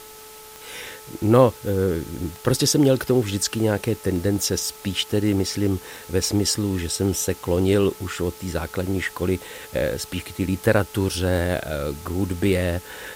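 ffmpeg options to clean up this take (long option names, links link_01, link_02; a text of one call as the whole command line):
ffmpeg -i in.wav -af "adeclick=threshold=4,bandreject=frequency=433.1:width_type=h:width=4,bandreject=frequency=866.2:width_type=h:width=4,bandreject=frequency=1299.3:width_type=h:width=4,afftdn=noise_reduction=25:noise_floor=-42" out.wav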